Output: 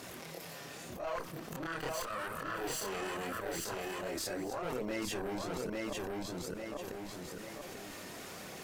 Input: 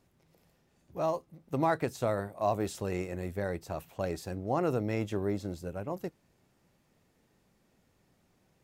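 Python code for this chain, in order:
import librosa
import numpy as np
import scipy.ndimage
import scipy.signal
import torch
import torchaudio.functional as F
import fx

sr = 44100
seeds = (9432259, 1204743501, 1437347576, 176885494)

y = fx.lower_of_two(x, sr, delay_ms=0.65, at=(1.15, 3.36))
y = fx.highpass(y, sr, hz=590.0, slope=6)
y = fx.notch(y, sr, hz=880.0, q=12.0)
y = fx.auto_swell(y, sr, attack_ms=275.0)
y = fx.level_steps(y, sr, step_db=10)
y = fx.tube_stage(y, sr, drive_db=42.0, bias=0.55)
y = fx.chorus_voices(y, sr, voices=2, hz=0.41, base_ms=27, depth_ms=3.6, mix_pct=60)
y = fx.echo_feedback(y, sr, ms=842, feedback_pct=18, wet_db=-4.5)
y = fx.env_flatten(y, sr, amount_pct=70)
y = y * librosa.db_to_amplitude(11.5)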